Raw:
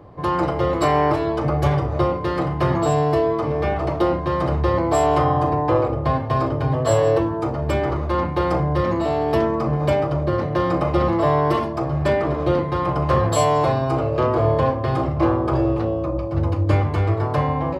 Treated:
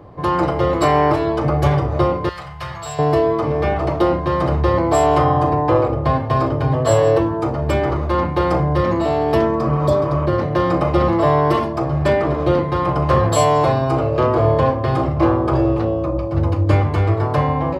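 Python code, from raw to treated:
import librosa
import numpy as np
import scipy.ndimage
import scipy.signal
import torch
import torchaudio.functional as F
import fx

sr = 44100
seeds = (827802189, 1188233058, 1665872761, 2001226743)

y = fx.tone_stack(x, sr, knobs='10-0-10', at=(2.29, 2.99))
y = fx.spec_repair(y, sr, seeds[0], start_s=9.63, length_s=0.6, low_hz=790.0, high_hz=3200.0, source='before')
y = y * 10.0 ** (3.0 / 20.0)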